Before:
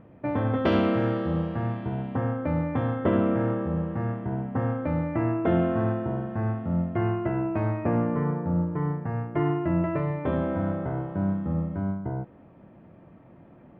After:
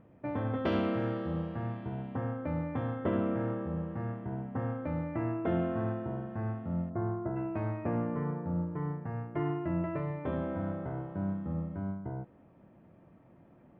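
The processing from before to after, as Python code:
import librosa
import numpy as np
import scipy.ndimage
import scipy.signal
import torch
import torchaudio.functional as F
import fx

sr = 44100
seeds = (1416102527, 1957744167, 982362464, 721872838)

y = fx.lowpass(x, sr, hz=1400.0, slope=24, at=(6.89, 7.35), fade=0.02)
y = y * 10.0 ** (-7.5 / 20.0)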